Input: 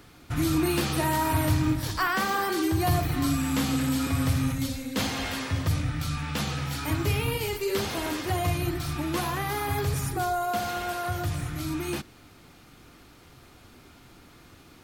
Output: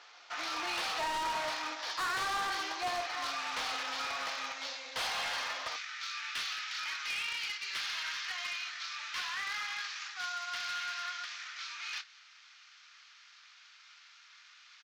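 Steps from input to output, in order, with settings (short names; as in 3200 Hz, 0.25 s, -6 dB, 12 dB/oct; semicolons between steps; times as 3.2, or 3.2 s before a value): CVSD 32 kbps; HPF 660 Hz 24 dB/oct, from 5.76 s 1400 Hz; hard clip -31.5 dBFS, distortion -8 dB; doubler 26 ms -13 dB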